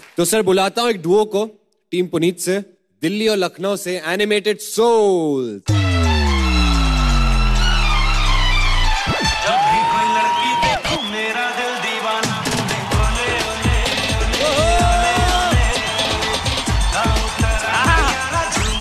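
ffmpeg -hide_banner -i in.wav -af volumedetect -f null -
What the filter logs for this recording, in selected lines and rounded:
mean_volume: -16.8 dB
max_volume: -1.6 dB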